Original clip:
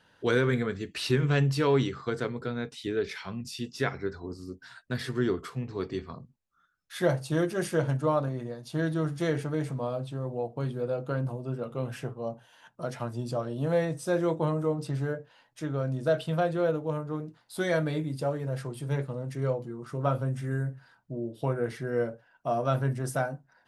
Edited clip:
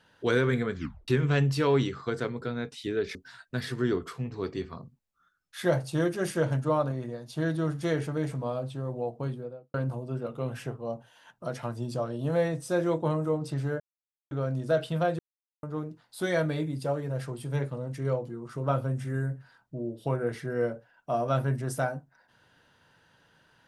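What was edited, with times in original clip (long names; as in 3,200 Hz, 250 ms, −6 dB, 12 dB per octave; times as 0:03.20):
0:00.75: tape stop 0.33 s
0:03.15–0:04.52: remove
0:10.51–0:11.11: fade out and dull
0:15.17–0:15.68: silence
0:16.56–0:17.00: silence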